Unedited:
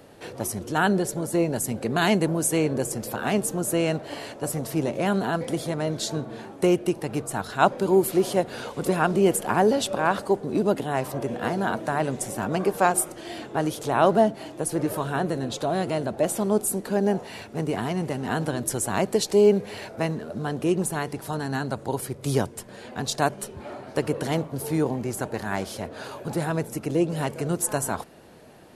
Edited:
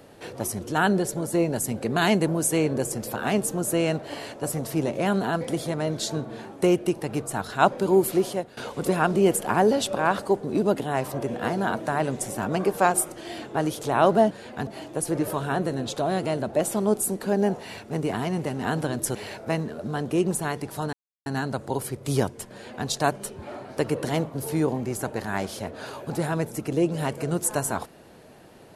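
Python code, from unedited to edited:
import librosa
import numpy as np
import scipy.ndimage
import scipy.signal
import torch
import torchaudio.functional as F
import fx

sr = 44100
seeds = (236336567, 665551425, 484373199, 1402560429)

y = fx.edit(x, sr, fx.fade_out_to(start_s=8.14, length_s=0.43, floor_db=-17.5),
    fx.cut(start_s=18.79, length_s=0.87),
    fx.insert_silence(at_s=21.44, length_s=0.33),
    fx.duplicate(start_s=22.7, length_s=0.36, to_s=14.31), tone=tone)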